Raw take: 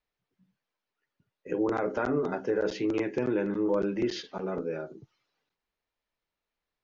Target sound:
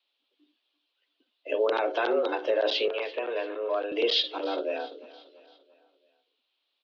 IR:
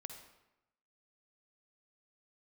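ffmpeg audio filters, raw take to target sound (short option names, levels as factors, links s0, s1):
-filter_complex "[0:a]aexciter=amount=7.6:drive=8.2:freq=2800,highpass=f=170:t=q:w=0.5412,highpass=f=170:t=q:w=1.307,lowpass=f=3500:t=q:w=0.5176,lowpass=f=3500:t=q:w=0.7071,lowpass=f=3500:t=q:w=1.932,afreqshift=110,asettb=1/sr,asplit=3[s0][s1][s2];[s0]atrim=end=2.884[s3];[s1]atrim=start=2.88:end=3.92,asetpts=PTS-STARTPTS,afade=t=in:d=0.004:c=qsin,afade=t=out:st=1.036:d=0.004:c=qsin,acrossover=split=590 2600:gain=0.251 1 0.0631[s4][s5][s6];[s4][s5][s6]amix=inputs=3:normalize=0[s7];[s2]atrim=start=3.916[s8];[s3][s7]acrossfade=d=0.004:c1=hsin:c2=qsin[s9];[s9][s8]acrossfade=d=0.004:c1=qsin:c2=hsin,asplit=2[s10][s11];[s11]aecho=0:1:340|680|1020|1360:0.112|0.0539|0.0259|0.0124[s12];[s10][s12]amix=inputs=2:normalize=0,volume=1.33"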